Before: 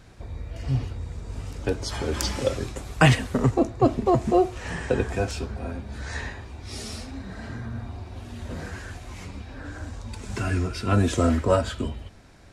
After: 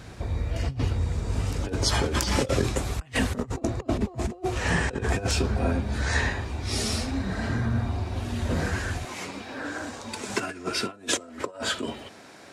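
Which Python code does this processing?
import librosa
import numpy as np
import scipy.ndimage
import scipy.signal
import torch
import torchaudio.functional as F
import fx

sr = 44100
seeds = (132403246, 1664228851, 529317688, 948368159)

y = fx.over_compress(x, sr, threshold_db=-29.0, ratio=-0.5)
y = fx.highpass(y, sr, hz=fx.steps((0.0, 45.0), (9.05, 280.0)), slope=12)
y = F.gain(torch.from_numpy(y), 4.0).numpy()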